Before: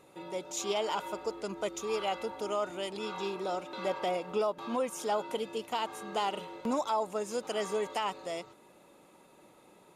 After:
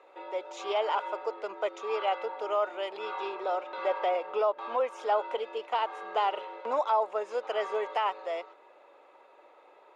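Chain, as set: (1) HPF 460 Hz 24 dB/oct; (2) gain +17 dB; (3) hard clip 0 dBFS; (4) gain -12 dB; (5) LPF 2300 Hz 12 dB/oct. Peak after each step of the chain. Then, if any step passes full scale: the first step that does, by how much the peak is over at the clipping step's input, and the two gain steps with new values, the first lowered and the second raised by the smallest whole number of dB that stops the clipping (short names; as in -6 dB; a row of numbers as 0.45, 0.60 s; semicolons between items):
-20.0, -3.0, -3.0, -15.0, -16.0 dBFS; no overload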